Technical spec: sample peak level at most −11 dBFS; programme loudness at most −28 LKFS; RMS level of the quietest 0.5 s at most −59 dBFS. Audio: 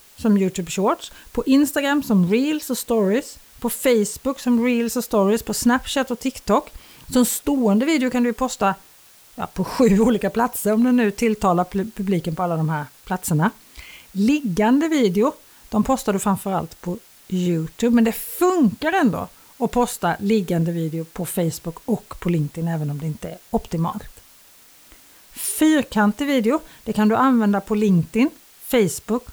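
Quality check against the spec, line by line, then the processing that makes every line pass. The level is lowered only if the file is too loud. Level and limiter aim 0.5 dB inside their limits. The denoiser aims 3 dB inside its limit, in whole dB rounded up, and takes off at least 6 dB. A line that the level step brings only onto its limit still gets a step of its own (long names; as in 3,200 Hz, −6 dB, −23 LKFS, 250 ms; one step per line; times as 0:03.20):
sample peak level −6.0 dBFS: out of spec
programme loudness −20.5 LKFS: out of spec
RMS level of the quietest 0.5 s −50 dBFS: out of spec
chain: broadband denoise 6 dB, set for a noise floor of −50 dBFS
level −8 dB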